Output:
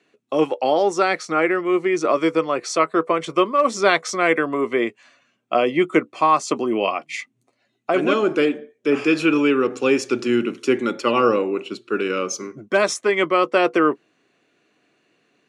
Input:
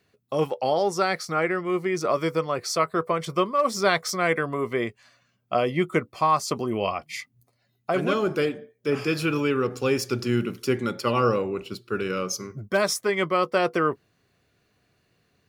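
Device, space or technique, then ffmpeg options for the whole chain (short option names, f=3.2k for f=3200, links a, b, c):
television speaker: -af "highpass=f=180:w=0.5412,highpass=f=180:w=1.3066,equalizer=f=180:t=q:w=4:g=-6,equalizer=f=310:t=q:w=4:g=6,equalizer=f=2.6k:t=q:w=4:g=4,equalizer=f=4.9k:t=q:w=4:g=-8,lowpass=f=8.3k:w=0.5412,lowpass=f=8.3k:w=1.3066,volume=4.5dB"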